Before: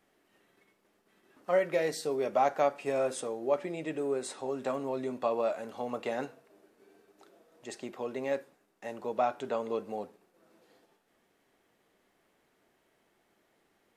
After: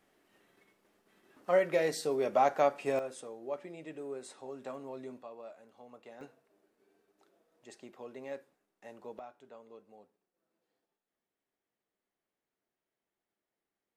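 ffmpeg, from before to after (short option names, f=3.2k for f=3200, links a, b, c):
-af "asetnsamples=n=441:p=0,asendcmd='2.99 volume volume -9.5dB;5.22 volume volume -18dB;6.21 volume volume -10dB;9.19 volume volume -20dB',volume=0dB"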